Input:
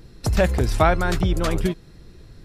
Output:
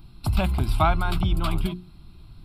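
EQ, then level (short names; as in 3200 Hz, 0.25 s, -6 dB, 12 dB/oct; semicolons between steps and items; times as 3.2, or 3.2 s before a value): notches 60/120/180/240/300/360 Hz; fixed phaser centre 1800 Hz, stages 6; 0.0 dB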